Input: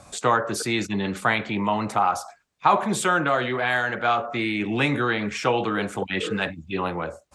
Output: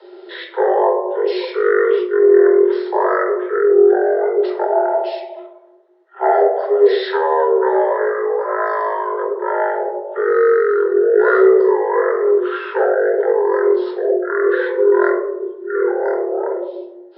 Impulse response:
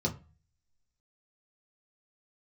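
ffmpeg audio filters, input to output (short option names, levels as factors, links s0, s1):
-filter_complex "[1:a]atrim=start_sample=2205,asetrate=27783,aresample=44100[s0];[0:a][s0]afir=irnorm=-1:irlink=0,asetrate=18846,aresample=44100,afreqshift=320,volume=0.631"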